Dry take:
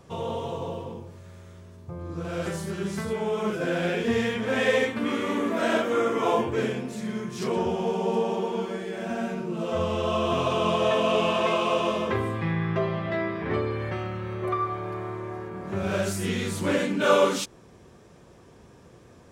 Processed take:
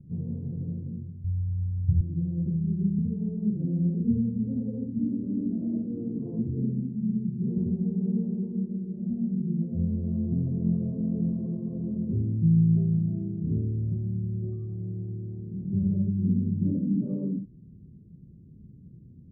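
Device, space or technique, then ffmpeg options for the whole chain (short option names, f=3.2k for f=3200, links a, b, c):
the neighbour's flat through the wall: -filter_complex "[0:a]asettb=1/sr,asplit=3[a][b][c];[a]atrim=end=1.244[d];[b]atrim=start=1.24:end=2.01,asetpts=PTS-STARTPTS,afade=t=in:d=0.004:c=qsin,afade=t=out:st=0.766:d=0.004:c=qsin,lowshelf=f=130:t=q:w=1.5:g=14[e];[c]atrim=start=2.006[f];[d][e]acrossfade=d=0.004:c1=hsin:c2=qsin[g];[g][f]acrossfade=d=0.004:c1=qsin:c2=hsin,lowpass=f=240:w=0.5412,lowpass=f=240:w=1.3066,equalizer=f=160:t=o:w=0.88:g=5.5,volume=3dB"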